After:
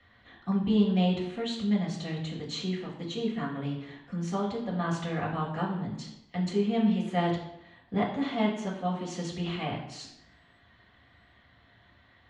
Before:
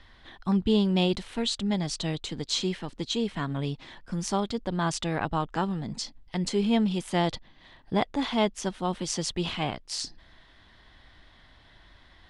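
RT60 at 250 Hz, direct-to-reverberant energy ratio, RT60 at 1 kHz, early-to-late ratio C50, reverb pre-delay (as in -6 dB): 0.75 s, -4.5 dB, 0.85 s, 5.5 dB, 3 ms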